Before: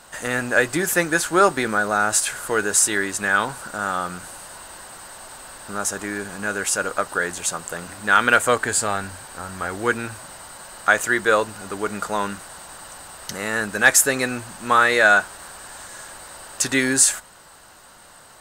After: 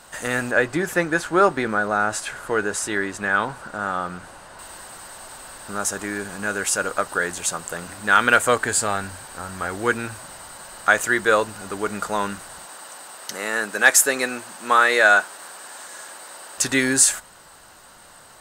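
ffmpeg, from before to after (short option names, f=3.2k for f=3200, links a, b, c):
-filter_complex "[0:a]asettb=1/sr,asplit=3[a][b][c];[a]atrim=end=0.514[d];[b]atrim=start=0.51:end=4.59,asetpts=PTS-STARTPTS,afade=t=in:d=0.004:c=qsin,afade=t=out:st=4.076:d=0.004:c=qsin,lowpass=f=2.3k:p=1[e];[c]atrim=start=4.586[f];[d][e]acrossfade=d=0.004:c1=hsin:c2=qsin[g];[g][f]acrossfade=d=0.004:c1=qsin:c2=hsin,asettb=1/sr,asplit=3[h][i][j];[h]atrim=end=12.654[k];[i]atrim=start=12.65:end=16.58,asetpts=PTS-STARTPTS,afade=t=in:d=0.004:c=qsin,afade=t=out:st=3.926:d=0.004:c=qsin,highpass=280[l];[j]atrim=start=16.576[m];[k][l]acrossfade=d=0.004:c1=hsin:c2=qsin[n];[n][m]acrossfade=d=0.004:c1=qsin:c2=hsin"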